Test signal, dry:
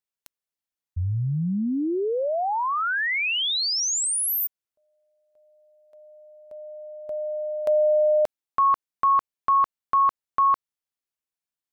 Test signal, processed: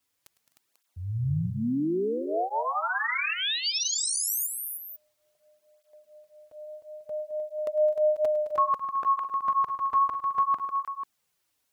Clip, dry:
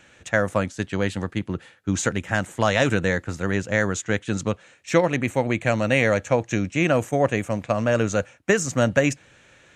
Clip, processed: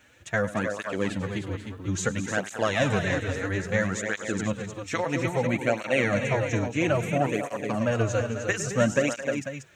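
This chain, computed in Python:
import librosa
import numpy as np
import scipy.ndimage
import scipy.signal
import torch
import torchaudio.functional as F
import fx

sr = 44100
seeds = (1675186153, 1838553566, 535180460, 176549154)

y = fx.quant_dither(x, sr, seeds[0], bits=12, dither='triangular')
y = fx.echo_multitap(y, sr, ms=(105, 214, 256, 307, 493), db=(-16.0, -13.0, -19.0, -7.0, -11.5))
y = fx.flanger_cancel(y, sr, hz=0.6, depth_ms=6.1)
y = F.gain(torch.from_numpy(y), -2.0).numpy()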